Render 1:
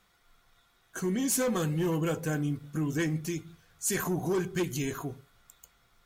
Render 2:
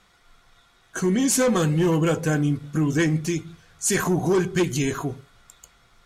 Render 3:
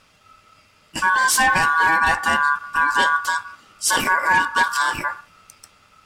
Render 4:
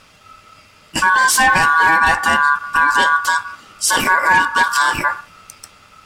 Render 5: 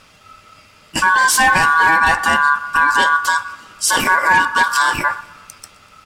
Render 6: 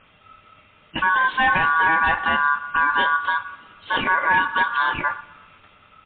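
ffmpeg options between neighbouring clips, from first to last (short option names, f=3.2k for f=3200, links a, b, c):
-af "lowpass=9.6k,volume=8.5dB"
-af "aeval=exprs='val(0)*sin(2*PI*1300*n/s)':c=same,volume=6dB"
-af "alimiter=limit=-12dB:level=0:latency=1:release=238,acontrast=32,volume=2.5dB"
-af "aecho=1:1:123|246|369|492:0.0708|0.0396|0.0222|0.0124"
-af "volume=-5dB" -ar 8000 -c:a libmp3lame -b:a 32k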